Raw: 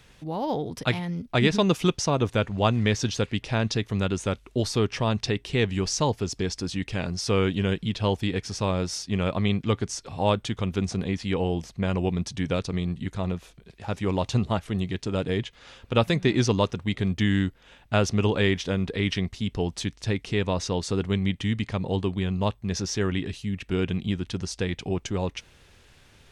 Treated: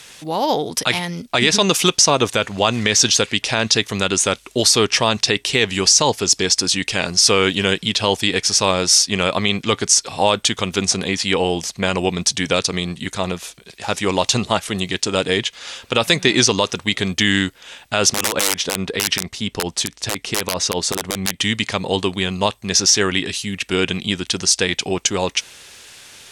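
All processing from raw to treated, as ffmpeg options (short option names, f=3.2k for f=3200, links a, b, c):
-filter_complex "[0:a]asettb=1/sr,asplit=3[a][b][c];[a]atrim=end=18.134[d];[b]atrim=start=18.13:end=21.4,asetpts=PTS-STARTPTS,afade=t=in:d=0.004:c=qsin,afade=t=out:st=3.266:d=0.004:c=qsin,highshelf=f=2.2k:g=-7.5,aeval=exprs='(mod(7.08*val(0)+1,2)-1)/7.08':c=same[e];[c]atrim=start=21.396[f];[d][e]acrossfade=d=0.004:c1=hsin:c2=qsin[g];[g][f]acrossfade=d=0.004:c1=qsin:c2=hsin,lowpass=9.1k,aemphasis=mode=production:type=riaa,alimiter=level_in=12.5dB:limit=-1dB:release=50:level=0:latency=1,volume=-1dB"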